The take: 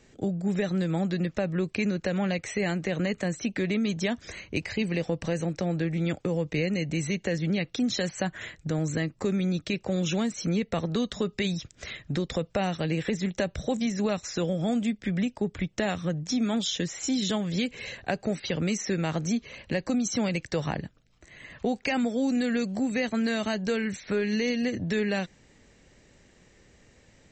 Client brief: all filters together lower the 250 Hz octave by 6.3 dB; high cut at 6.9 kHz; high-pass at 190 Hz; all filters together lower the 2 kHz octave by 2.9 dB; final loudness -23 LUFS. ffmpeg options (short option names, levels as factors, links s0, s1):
-af "highpass=190,lowpass=6900,equalizer=f=250:t=o:g=-5.5,equalizer=f=2000:t=o:g=-3.5,volume=3.16"